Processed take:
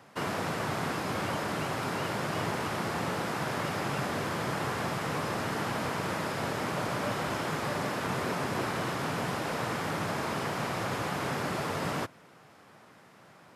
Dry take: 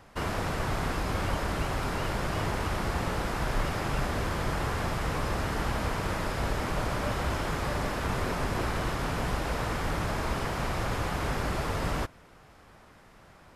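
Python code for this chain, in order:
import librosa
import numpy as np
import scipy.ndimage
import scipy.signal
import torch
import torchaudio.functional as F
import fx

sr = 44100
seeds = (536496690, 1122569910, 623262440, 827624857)

y = scipy.signal.sosfilt(scipy.signal.butter(4, 120.0, 'highpass', fs=sr, output='sos'), x)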